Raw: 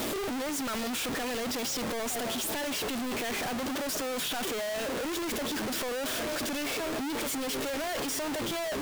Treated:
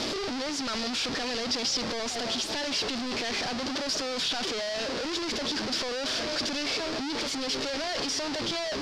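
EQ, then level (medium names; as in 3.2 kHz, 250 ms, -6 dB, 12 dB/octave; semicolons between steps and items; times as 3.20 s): resonant low-pass 4.9 kHz, resonance Q 3.4; 0.0 dB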